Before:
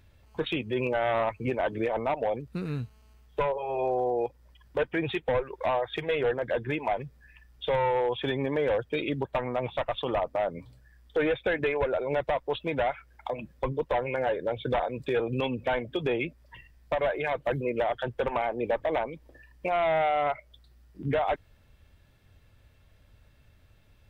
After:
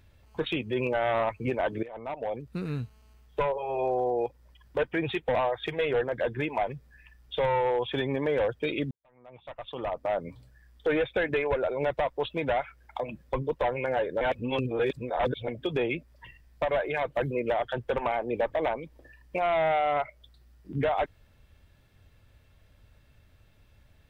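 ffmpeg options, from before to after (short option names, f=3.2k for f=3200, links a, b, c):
-filter_complex "[0:a]asplit=6[a][b][c][d][e][f];[a]atrim=end=1.83,asetpts=PTS-STARTPTS,afade=t=out:st=1.826:d=0.004:c=hsin:silence=0.125893[g];[b]atrim=start=1.83:end=5.352,asetpts=PTS-STARTPTS,afade=t=in:d=0.78:silence=0.125893[h];[c]atrim=start=5.648:end=9.21,asetpts=PTS-STARTPTS,afade=t=out:st=3.558:d=0.004:c=hsin[i];[d]atrim=start=9.21:end=14.512,asetpts=PTS-STARTPTS,afade=t=in:d=1.24:c=qua[j];[e]atrim=start=14.508:end=15.782,asetpts=PTS-STARTPTS,areverse[k];[f]atrim=start=15.778[l];[g][h]concat=n=2:v=0:a=1[m];[i][j]concat=n=2:v=0:a=1[n];[m][n]acrossfade=d=0.004:c1=hsin:c2=hsin[o];[o][k]acrossfade=d=0.004:c1=hsin:c2=hsin[p];[p][l]acrossfade=d=0.004:c1=hsin:c2=hsin"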